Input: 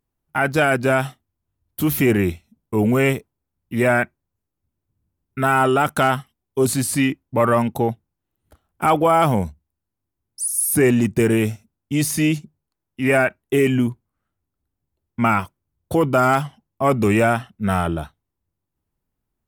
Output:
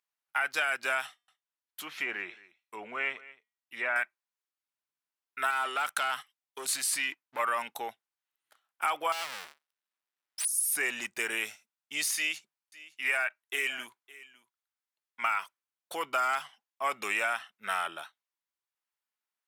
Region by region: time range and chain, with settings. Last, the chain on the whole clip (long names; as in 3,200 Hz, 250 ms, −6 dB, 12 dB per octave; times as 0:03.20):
0:01.06–0:03.96: treble cut that deepens with the level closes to 2,400 Hz, closed at −14.5 dBFS + tuned comb filter 240 Hz, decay 0.43 s, mix 30% + single-tap delay 220 ms −20 dB
0:05.50–0:07.39: leveller curve on the samples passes 1 + downward compressor 4 to 1, threshold −18 dBFS
0:09.12–0:10.45: each half-wave held at its own peak + notch filter 6,600 Hz, Q 15 + downward compressor 8 to 1, threshold −25 dBFS
0:12.16–0:15.40: low-shelf EQ 300 Hz −9 dB + single-tap delay 560 ms −20.5 dB
whole clip: high-pass filter 1,500 Hz 12 dB per octave; high-shelf EQ 8,100 Hz −9.5 dB; downward compressor, threshold −25 dBFS